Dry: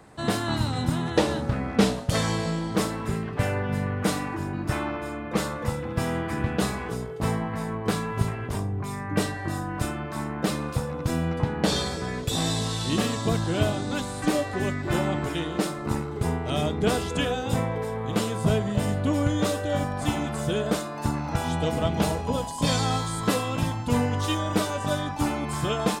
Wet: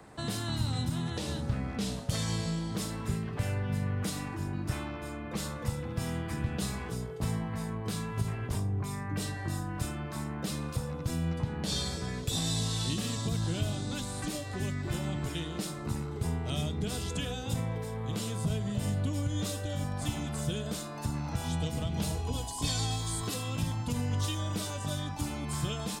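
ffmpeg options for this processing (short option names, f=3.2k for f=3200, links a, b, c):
-filter_complex "[0:a]asettb=1/sr,asplit=3[a][b][c];[a]atrim=end=22.154[d];[b]atrim=start=22.15:end=23.34,asetpts=PTS-STARTPTS,afade=t=in:d=0.004:c=qsin,afade=t=out:st=1.186:d=0.004:c=qsin,aecho=1:1:2.7:0.59,atrim=end_sample=52479[e];[c]atrim=start=23.336[f];[d][e]acrossfade=d=0.004:c1=hsin:c2=qsin[g];[g][f]acrossfade=d=0.004:c1=qsin:c2=hsin,alimiter=limit=-16dB:level=0:latency=1:release=106,acrossover=split=190|3000[h][i][j];[i]acompressor=threshold=-39dB:ratio=4[k];[h][k][j]amix=inputs=3:normalize=0,volume=-1.5dB"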